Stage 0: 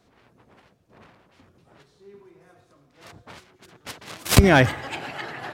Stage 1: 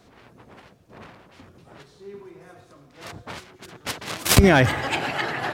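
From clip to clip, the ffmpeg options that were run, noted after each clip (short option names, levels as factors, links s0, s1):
-af "alimiter=limit=0.237:level=0:latency=1:release=158,volume=2.37"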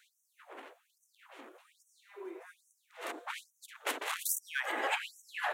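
-af "acompressor=threshold=0.0355:ratio=2.5,equalizer=f=5000:t=o:w=0.66:g=-13,afftfilt=real='re*gte(b*sr/1024,240*pow(5700/240,0.5+0.5*sin(2*PI*1.2*pts/sr)))':imag='im*gte(b*sr/1024,240*pow(5700/240,0.5+0.5*sin(2*PI*1.2*pts/sr)))':win_size=1024:overlap=0.75"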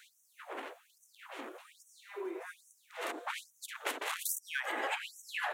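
-af "acompressor=threshold=0.00562:ratio=2.5,volume=2.37"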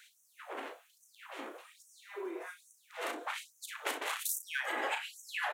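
-af "aecho=1:1:36|61:0.376|0.141"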